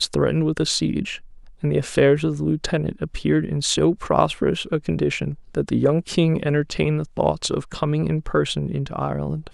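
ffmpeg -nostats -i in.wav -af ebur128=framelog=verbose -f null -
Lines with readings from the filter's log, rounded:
Integrated loudness:
  I:         -21.9 LUFS
  Threshold: -32.0 LUFS
Loudness range:
  LRA:         1.4 LU
  Threshold: -41.8 LUFS
  LRA low:   -22.3 LUFS
  LRA high:  -20.9 LUFS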